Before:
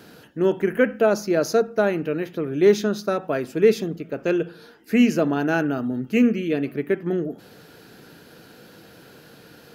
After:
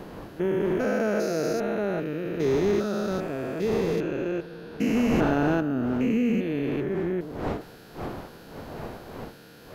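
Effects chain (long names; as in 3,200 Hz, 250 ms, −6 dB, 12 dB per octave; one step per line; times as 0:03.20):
spectrum averaged block by block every 400 ms
wind on the microphone 630 Hz −38 dBFS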